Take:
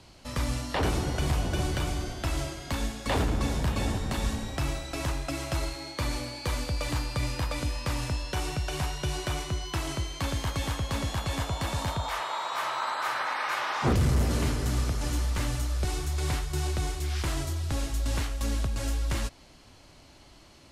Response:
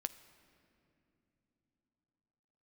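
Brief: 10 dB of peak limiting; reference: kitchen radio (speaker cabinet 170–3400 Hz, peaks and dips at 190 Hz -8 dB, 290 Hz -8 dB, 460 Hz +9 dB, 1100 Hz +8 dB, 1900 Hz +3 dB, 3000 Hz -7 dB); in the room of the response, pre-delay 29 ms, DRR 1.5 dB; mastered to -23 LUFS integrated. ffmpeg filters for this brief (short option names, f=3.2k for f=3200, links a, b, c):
-filter_complex "[0:a]alimiter=level_in=4.5dB:limit=-24dB:level=0:latency=1,volume=-4.5dB,asplit=2[a][b];[1:a]atrim=start_sample=2205,adelay=29[c];[b][c]afir=irnorm=-1:irlink=0,volume=0dB[d];[a][d]amix=inputs=2:normalize=0,highpass=170,equalizer=f=190:t=q:w=4:g=-8,equalizer=f=290:t=q:w=4:g=-8,equalizer=f=460:t=q:w=4:g=9,equalizer=f=1.1k:t=q:w=4:g=8,equalizer=f=1.9k:t=q:w=4:g=3,equalizer=f=3k:t=q:w=4:g=-7,lowpass=f=3.4k:w=0.5412,lowpass=f=3.4k:w=1.3066,volume=13.5dB"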